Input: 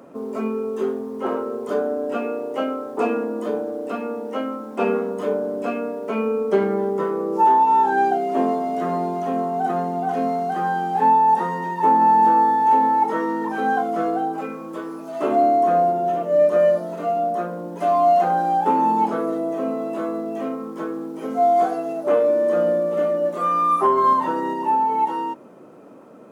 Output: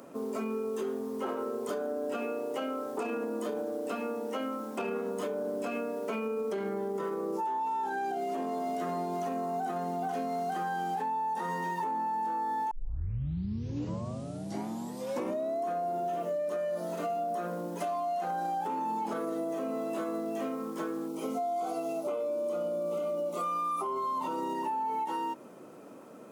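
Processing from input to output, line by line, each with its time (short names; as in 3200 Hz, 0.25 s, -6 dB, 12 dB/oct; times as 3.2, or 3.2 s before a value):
9.24–9.66 notch 3200 Hz, Q 8.2
12.71 tape start 2.96 s
21.08–24.55 Butterworth band-stop 1700 Hz, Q 2.7
whole clip: limiter -17.5 dBFS; high shelf 3100 Hz +11 dB; compressor, threshold -25 dBFS; gain -5 dB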